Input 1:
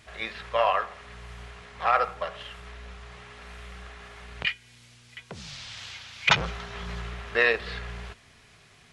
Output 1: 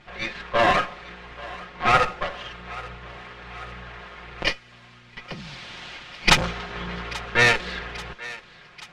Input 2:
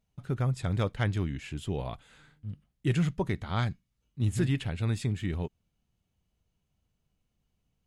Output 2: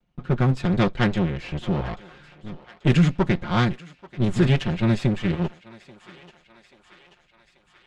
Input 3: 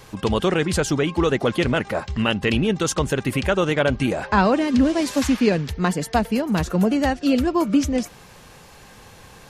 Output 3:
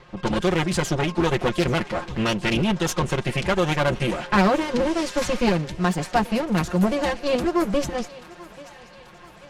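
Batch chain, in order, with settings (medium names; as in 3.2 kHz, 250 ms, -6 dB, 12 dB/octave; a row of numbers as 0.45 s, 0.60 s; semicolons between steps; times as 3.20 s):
comb filter that takes the minimum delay 5.6 ms; level-controlled noise filter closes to 2.9 kHz, open at -16 dBFS; thinning echo 835 ms, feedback 66%, high-pass 540 Hz, level -17.5 dB; normalise loudness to -23 LUFS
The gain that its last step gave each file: +6.5 dB, +10.0 dB, -1.0 dB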